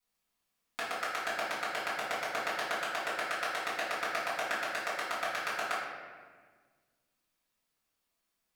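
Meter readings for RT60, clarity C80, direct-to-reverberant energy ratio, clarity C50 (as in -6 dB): 1.6 s, 3.5 dB, -10.5 dB, 0.5 dB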